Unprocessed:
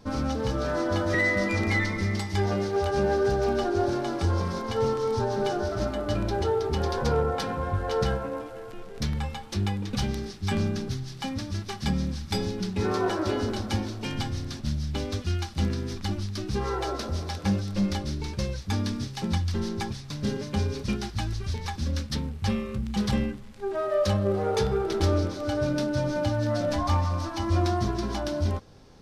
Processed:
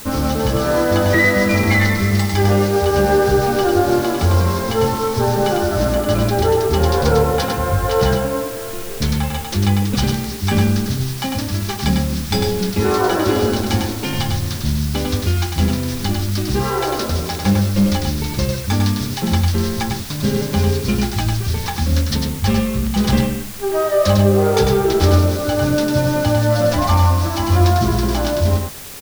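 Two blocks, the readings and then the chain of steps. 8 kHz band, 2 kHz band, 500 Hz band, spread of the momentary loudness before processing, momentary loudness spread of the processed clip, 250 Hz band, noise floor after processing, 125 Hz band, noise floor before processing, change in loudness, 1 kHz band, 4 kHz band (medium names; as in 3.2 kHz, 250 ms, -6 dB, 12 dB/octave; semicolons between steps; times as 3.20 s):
+14.5 dB, +10.0 dB, +10.0 dB, 7 LU, 7 LU, +10.5 dB, -27 dBFS, +11.0 dB, -41 dBFS, +10.5 dB, +10.5 dB, +11.5 dB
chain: in parallel at -5 dB: word length cut 6-bit, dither triangular; on the sum: delay 100 ms -4.5 dB; trim +5.5 dB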